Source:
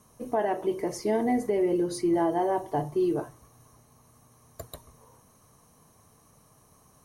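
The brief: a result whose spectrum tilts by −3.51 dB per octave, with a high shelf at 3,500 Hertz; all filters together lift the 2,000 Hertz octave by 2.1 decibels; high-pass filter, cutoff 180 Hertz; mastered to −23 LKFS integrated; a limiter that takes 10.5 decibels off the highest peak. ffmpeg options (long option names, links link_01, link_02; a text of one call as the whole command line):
ffmpeg -i in.wav -af "highpass=180,equalizer=frequency=2000:width_type=o:gain=4.5,highshelf=frequency=3500:gain=-8.5,volume=11.5dB,alimiter=limit=-14.5dB:level=0:latency=1" out.wav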